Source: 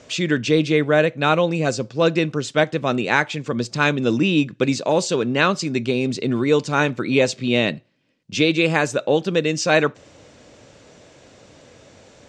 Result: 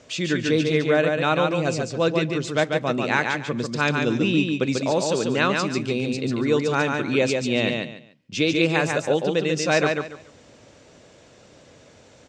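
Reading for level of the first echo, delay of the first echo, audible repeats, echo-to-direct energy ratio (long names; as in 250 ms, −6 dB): −4.0 dB, 143 ms, 3, −3.5 dB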